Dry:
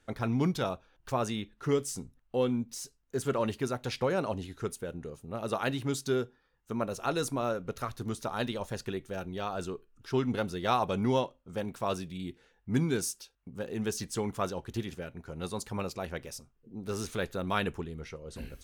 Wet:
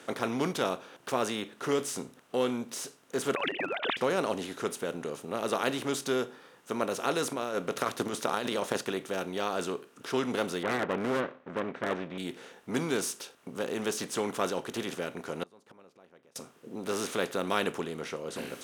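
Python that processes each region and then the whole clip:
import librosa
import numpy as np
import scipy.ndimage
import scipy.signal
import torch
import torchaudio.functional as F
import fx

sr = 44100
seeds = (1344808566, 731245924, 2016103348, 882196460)

y = fx.chain(x, sr, fx.sine_speech(),
    fx.spectral_comp(ratio=10.0), at=(3.35, 3.97))
y = fx.chain(y, sr, fx.over_compress(threshold_db=-36.0, ratio=-1.0),
    fx.transient(attack_db=10, sustain_db=-1), at=(7.33, 8.82))
y = fx.chain(y, sr, fx.lower_of_two(delay_ms=0.51),
    fx.lowpass(hz=2200.0, slope=24),
    fx.clip_hard(threshold_db=-25.0), at=(10.63, 12.18))
y = fx.chain(y, sr, fx.lowpass(hz=1200.0, slope=6),
    fx.gate_flip(shuts_db=-38.0, range_db=-40), at=(15.43, 16.36))
y = fx.bin_compress(y, sr, power=0.6)
y = scipy.signal.sosfilt(scipy.signal.butter(2, 250.0, 'highpass', fs=sr, output='sos'), y)
y = y * librosa.db_to_amplitude(-1.5)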